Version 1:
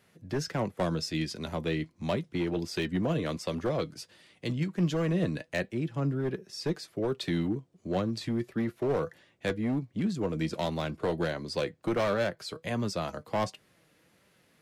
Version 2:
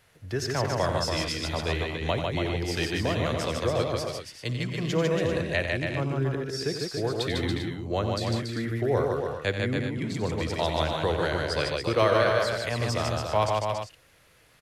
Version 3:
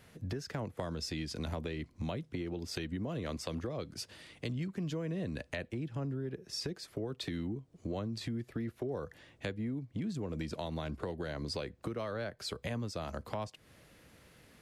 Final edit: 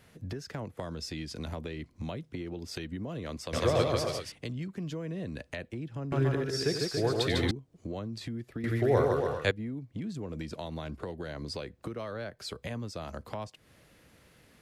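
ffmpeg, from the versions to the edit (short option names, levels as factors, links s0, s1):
-filter_complex "[1:a]asplit=3[s0][s1][s2];[2:a]asplit=4[s3][s4][s5][s6];[s3]atrim=end=3.532[s7];[s0]atrim=start=3.528:end=4.322[s8];[s4]atrim=start=4.318:end=6.122[s9];[s1]atrim=start=6.118:end=7.512[s10];[s5]atrim=start=7.508:end=8.642[s11];[s2]atrim=start=8.638:end=9.512[s12];[s6]atrim=start=9.508[s13];[s7][s8]acrossfade=d=0.004:c1=hsin:c2=hsin[s14];[s14][s9]acrossfade=d=0.004:c1=hsin:c2=hsin[s15];[s15][s10]acrossfade=d=0.004:c1=hsin:c2=hsin[s16];[s16][s11]acrossfade=d=0.004:c1=hsin:c2=hsin[s17];[s17][s12]acrossfade=d=0.004:c1=hsin:c2=hsin[s18];[s18][s13]acrossfade=d=0.004:c1=hsin:c2=hsin"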